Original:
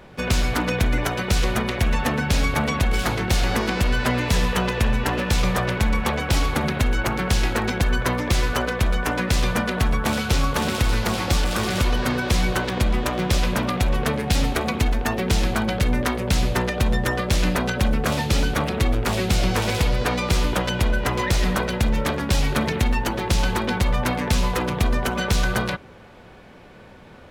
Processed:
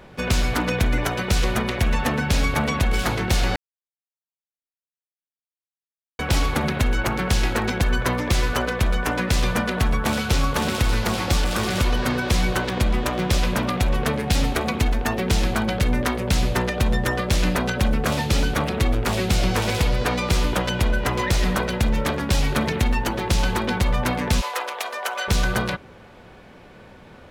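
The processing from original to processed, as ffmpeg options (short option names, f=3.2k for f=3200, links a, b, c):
-filter_complex "[0:a]asplit=3[a][b][c];[a]afade=t=out:st=24.4:d=0.02[d];[b]highpass=f=560:w=0.5412,highpass=f=560:w=1.3066,afade=t=in:st=24.4:d=0.02,afade=t=out:st=25.27:d=0.02[e];[c]afade=t=in:st=25.27:d=0.02[f];[d][e][f]amix=inputs=3:normalize=0,asplit=3[g][h][i];[g]atrim=end=3.56,asetpts=PTS-STARTPTS,afade=t=out:st=3.556:d=0.004:c=hsin[j];[h]atrim=start=3.56:end=6.19,asetpts=PTS-STARTPTS,volume=0[k];[i]atrim=start=6.19,asetpts=PTS-STARTPTS,afade=t=in:d=0.004:c=hsin[l];[j][k][l]concat=n=3:v=0:a=1"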